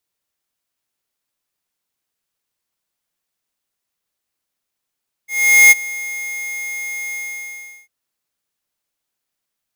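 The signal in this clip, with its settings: ADSR square 2140 Hz, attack 0.432 s, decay 25 ms, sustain -20 dB, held 1.86 s, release 0.738 s -6 dBFS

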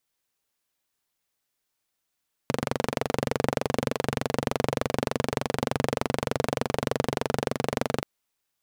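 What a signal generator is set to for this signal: single-cylinder engine model, steady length 5.53 s, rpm 2800, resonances 140/240/450 Hz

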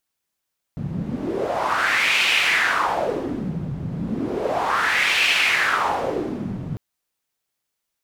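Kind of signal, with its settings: wind-like swept noise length 6.00 s, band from 150 Hz, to 2600 Hz, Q 3.4, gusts 2, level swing 9.5 dB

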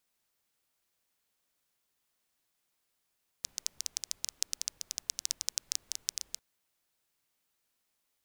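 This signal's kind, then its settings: rain from filtered ticks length 2.95 s, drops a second 11, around 5800 Hz, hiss -27.5 dB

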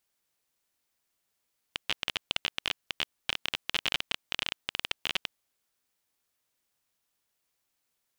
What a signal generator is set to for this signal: random clicks 21/s -11 dBFS 3.66 s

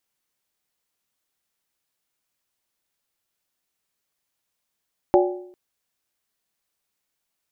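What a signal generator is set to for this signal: skin hit length 0.40 s, lowest mode 361 Hz, modes 4, decay 0.67 s, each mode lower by 3 dB, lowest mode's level -12 dB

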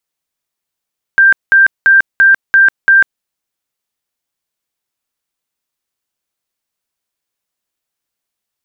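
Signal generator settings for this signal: tone bursts 1580 Hz, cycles 230, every 0.34 s, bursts 6, -3.5 dBFS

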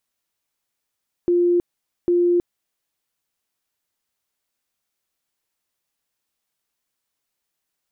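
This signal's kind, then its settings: tone bursts 350 Hz, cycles 112, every 0.80 s, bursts 2, -14 dBFS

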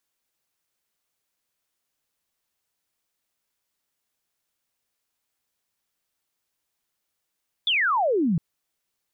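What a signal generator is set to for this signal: laser zap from 3600 Hz, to 150 Hz, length 0.71 s sine, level -19 dB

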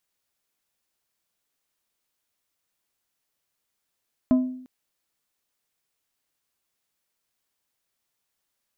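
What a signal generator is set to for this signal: glass hit plate, length 0.35 s, lowest mode 255 Hz, decay 0.67 s, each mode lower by 11 dB, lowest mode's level -13 dB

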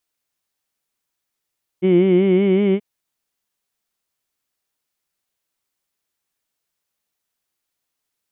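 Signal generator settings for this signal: formant vowel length 0.98 s, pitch 179 Hz, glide +2 st, vibrato depth 0.85 st, F1 340 Hz, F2 2200 Hz, F3 3000 Hz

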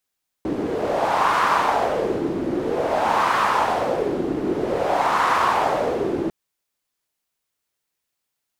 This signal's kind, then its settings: wind-like swept noise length 5.85 s, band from 320 Hz, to 1100 Hz, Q 3.2, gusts 3, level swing 6 dB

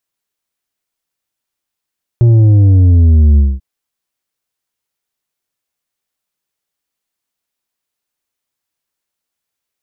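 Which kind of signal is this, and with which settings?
sub drop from 120 Hz, over 1.39 s, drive 6.5 dB, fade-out 0.22 s, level -5 dB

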